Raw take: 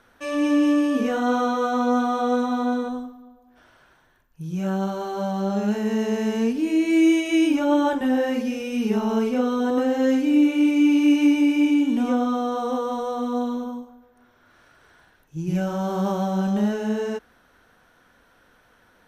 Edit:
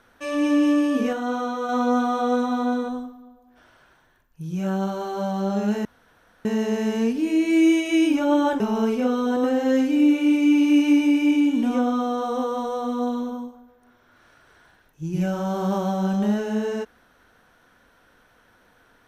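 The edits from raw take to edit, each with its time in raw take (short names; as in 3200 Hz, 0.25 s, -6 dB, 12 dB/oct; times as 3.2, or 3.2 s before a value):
1.13–1.69 gain -4.5 dB
5.85 insert room tone 0.60 s
8–8.94 cut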